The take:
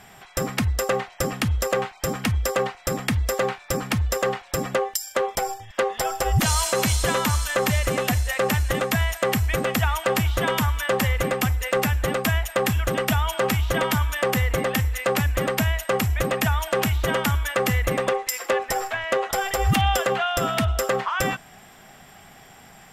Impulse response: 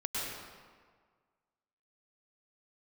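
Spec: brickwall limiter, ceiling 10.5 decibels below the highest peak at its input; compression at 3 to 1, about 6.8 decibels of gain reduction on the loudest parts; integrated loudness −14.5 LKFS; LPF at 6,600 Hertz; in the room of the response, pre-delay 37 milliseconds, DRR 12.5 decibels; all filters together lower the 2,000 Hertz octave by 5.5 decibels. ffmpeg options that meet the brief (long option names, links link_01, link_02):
-filter_complex "[0:a]lowpass=6600,equalizer=frequency=2000:width_type=o:gain=-7,acompressor=threshold=-27dB:ratio=3,alimiter=level_in=1dB:limit=-24dB:level=0:latency=1,volume=-1dB,asplit=2[link_01][link_02];[1:a]atrim=start_sample=2205,adelay=37[link_03];[link_02][link_03]afir=irnorm=-1:irlink=0,volume=-17.5dB[link_04];[link_01][link_04]amix=inputs=2:normalize=0,volume=19dB"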